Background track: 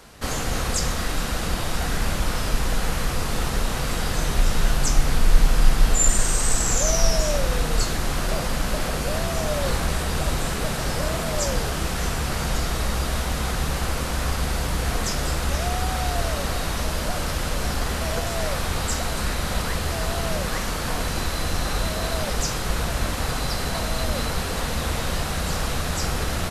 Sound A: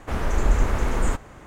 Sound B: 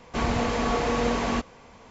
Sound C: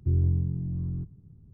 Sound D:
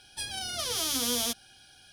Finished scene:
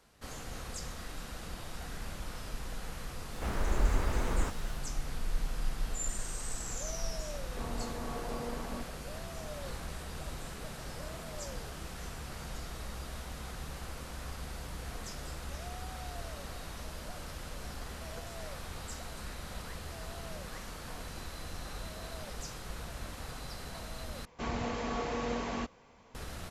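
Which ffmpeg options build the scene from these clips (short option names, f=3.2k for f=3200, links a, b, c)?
-filter_complex "[2:a]asplit=2[a][b];[0:a]volume=-17.5dB[c];[1:a]acrusher=bits=8:mix=0:aa=0.000001[d];[a]lowpass=1.4k[e];[c]asplit=2[f][g];[f]atrim=end=24.254[h];[b]atrim=end=1.9,asetpts=PTS-STARTPTS,volume=-10dB[i];[g]atrim=start=26.146[j];[d]atrim=end=1.46,asetpts=PTS-STARTPTS,volume=-8.5dB,afade=t=in:d=0.004:c=hsin,afade=t=out:st=1.456:d=0.004:c=hsin,adelay=3340[k];[e]atrim=end=1.9,asetpts=PTS-STARTPTS,volume=-15dB,afade=t=in:d=0.004:c=hsin,afade=t=out:st=1.896:d=0.004:c=hsin,adelay=7420[l];[h][i]acrossfade=d=0.004:c1=hsin:c2=hsin[m];[m][j]acrossfade=d=0.004:c1=hsin:c2=hsin[n];[n][k][l]amix=inputs=3:normalize=0"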